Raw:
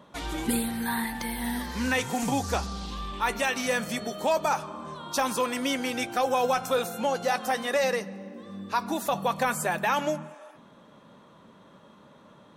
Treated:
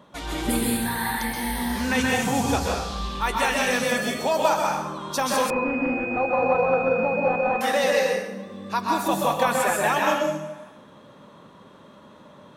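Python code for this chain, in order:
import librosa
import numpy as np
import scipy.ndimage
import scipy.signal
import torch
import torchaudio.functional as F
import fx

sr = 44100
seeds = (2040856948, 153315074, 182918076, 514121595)

y = fx.rev_plate(x, sr, seeds[0], rt60_s=0.79, hf_ratio=0.9, predelay_ms=115, drr_db=-2.0)
y = fx.pwm(y, sr, carrier_hz=2500.0, at=(5.5, 7.61))
y = y * 10.0 ** (1.0 / 20.0)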